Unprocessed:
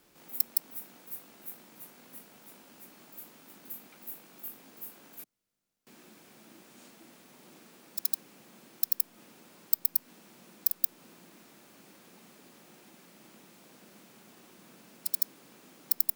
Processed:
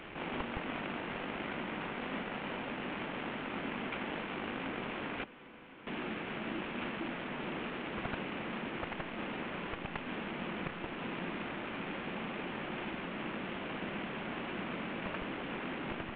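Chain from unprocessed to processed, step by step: CVSD coder 16 kbps; shuffle delay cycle 1064 ms, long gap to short 3:1, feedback 72%, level -19.5 dB; trim +17 dB

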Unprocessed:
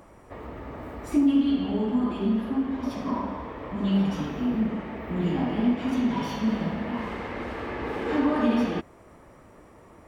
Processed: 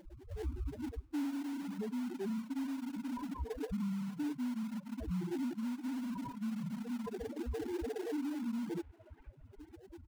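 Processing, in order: loudest bins only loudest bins 2; comb 2.8 ms, depth 57%; reverse; compression 16:1, threshold -33 dBFS, peak gain reduction 17.5 dB; reverse; peak limiter -38 dBFS, peak gain reduction 10 dB; in parallel at -6 dB: sample-rate reducer 1.2 kHz, jitter 20%; on the sum: feedback echo behind a band-pass 466 ms, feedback 42%, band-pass 1.4 kHz, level -11 dB; reverb removal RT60 1.9 s; trim +4.5 dB

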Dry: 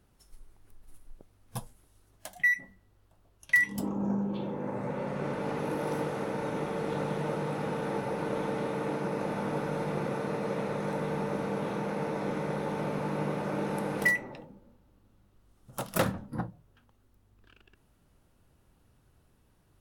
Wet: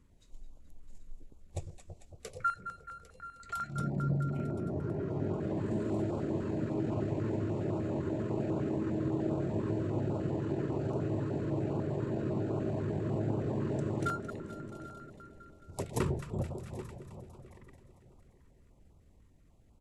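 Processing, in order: echo whose repeats swap between lows and highs 111 ms, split 1.1 kHz, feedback 82%, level -10 dB; in parallel at -2 dB: compression, threshold -39 dBFS, peak gain reduction 18 dB; on the sum: delay 791 ms -15.5 dB; pitch shift -6 st; treble shelf 2.2 kHz -9 dB; step-sequenced notch 10 Hz 710–1800 Hz; trim -2 dB

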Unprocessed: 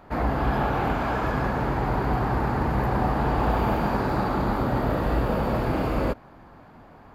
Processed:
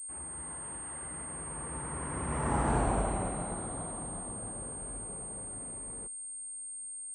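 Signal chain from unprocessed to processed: Doppler pass-by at 2.72 s, 59 m/s, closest 15 m; class-D stage that switches slowly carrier 8.6 kHz; trim -4.5 dB

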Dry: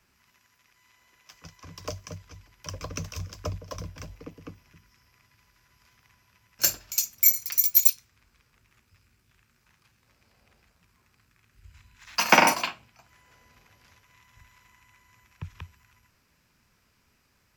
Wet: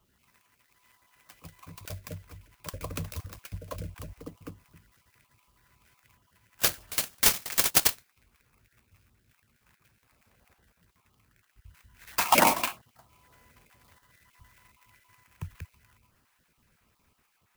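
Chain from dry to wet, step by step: random holes in the spectrogram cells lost 27%; sampling jitter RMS 0.05 ms

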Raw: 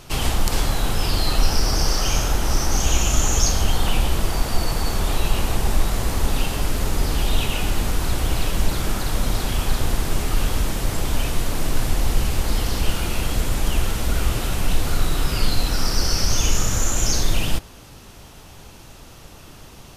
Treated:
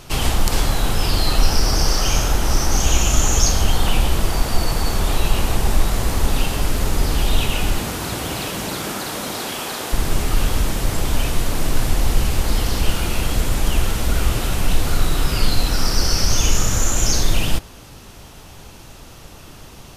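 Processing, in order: 7.77–9.92 s: high-pass 97 Hz -> 350 Hz 12 dB/octave; trim +2.5 dB

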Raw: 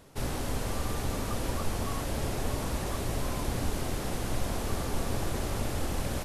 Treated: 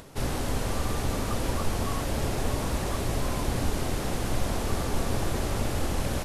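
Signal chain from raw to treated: upward compressor, threshold -46 dBFS; loudspeaker Doppler distortion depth 0.13 ms; trim +3.5 dB

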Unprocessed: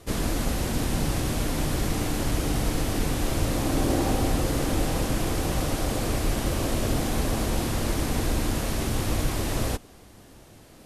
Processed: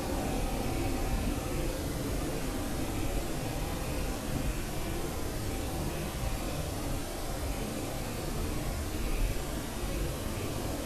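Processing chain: rattle on loud lows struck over -22 dBFS, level -24 dBFS; Paulstretch 4.1×, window 0.10 s, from 4.05 s; trim -8.5 dB

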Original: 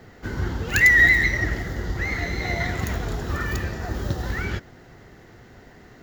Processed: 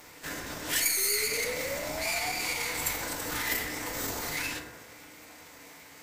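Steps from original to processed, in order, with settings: half-wave rectifier; peaking EQ 13 kHz +5 dB 1.2 oct; de-hum 50.69 Hz, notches 10; compression 2.5:1, threshold -27 dBFS, peak gain reduction 10 dB; hard clipper -26 dBFS, distortion -11 dB; RIAA curve recording; formant-preserving pitch shift -6.5 st; painted sound rise, 0.97–2.33 s, 380–760 Hz -39 dBFS; formant shift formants +2 st; FDN reverb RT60 1.2 s, low-frequency decay 0.75×, high-frequency decay 0.35×, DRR 1 dB

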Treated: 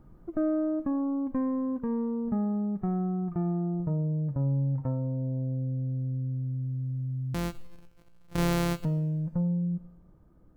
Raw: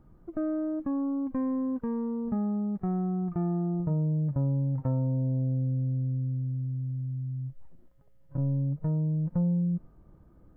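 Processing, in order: 7.34–8.85 s: sorted samples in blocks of 256 samples; gain riding within 4 dB 2 s; two-slope reverb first 0.86 s, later 2.3 s, from -18 dB, DRR 15.5 dB

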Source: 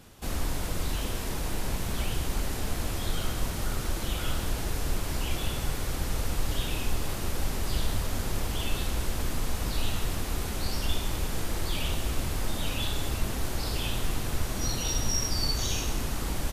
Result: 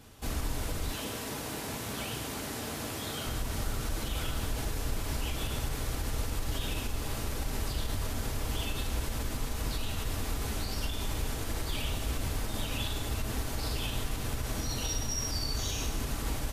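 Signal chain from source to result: 0.91–3.27 s: high-pass 140 Hz 12 dB/octave; peak limiter -21.5 dBFS, peak gain reduction 7.5 dB; comb of notches 180 Hz

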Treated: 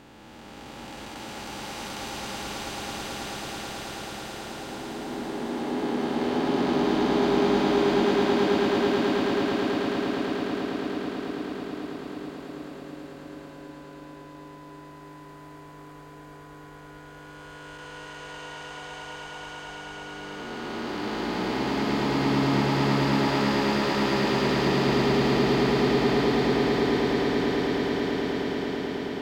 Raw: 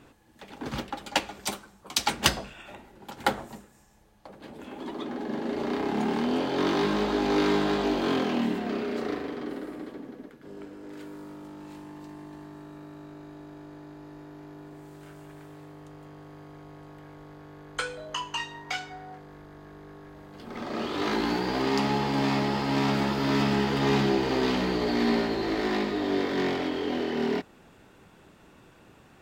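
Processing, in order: spectral blur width 1220 ms; echo with a slow build-up 109 ms, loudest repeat 8, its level -6.5 dB; in parallel at -10 dB: saturation -21.5 dBFS, distortion -11 dB; on the sum: trim -2.5 dB

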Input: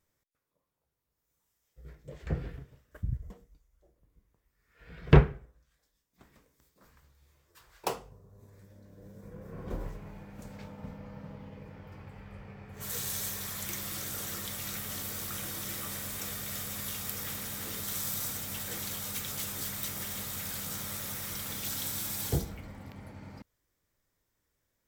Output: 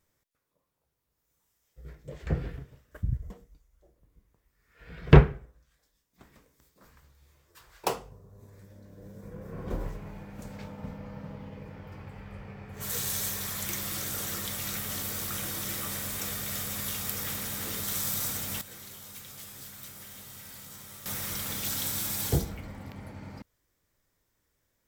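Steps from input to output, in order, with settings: 18.61–21.06 s: feedback comb 130 Hz, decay 1.5 s, mix 80%; trim +3.5 dB

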